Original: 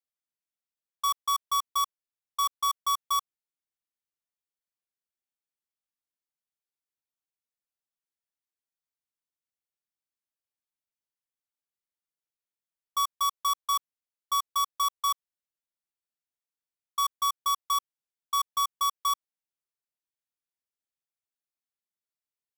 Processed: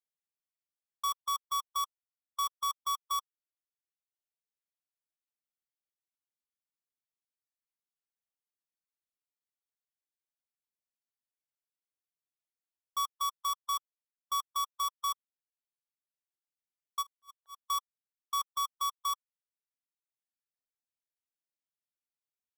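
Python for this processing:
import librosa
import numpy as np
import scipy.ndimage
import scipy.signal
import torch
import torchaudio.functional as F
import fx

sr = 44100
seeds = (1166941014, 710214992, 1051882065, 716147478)

y = fx.auto_swell(x, sr, attack_ms=385.0, at=(17.01, 17.61), fade=0.02)
y = fx.dereverb_blind(y, sr, rt60_s=1.3)
y = y * 10.0 ** (-5.0 / 20.0)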